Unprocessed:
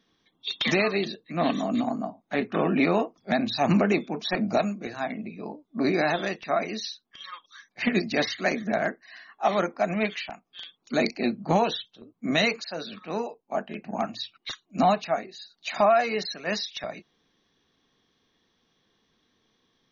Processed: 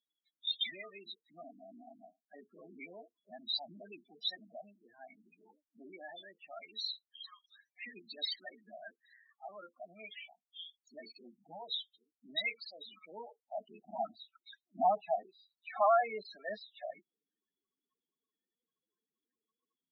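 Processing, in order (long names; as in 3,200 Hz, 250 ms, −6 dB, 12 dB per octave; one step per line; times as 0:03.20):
leveller curve on the samples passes 1
spectral peaks only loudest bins 8
band-pass filter sweep 4,600 Hz → 1,100 Hz, 0:12.04–0:13.99
level −1 dB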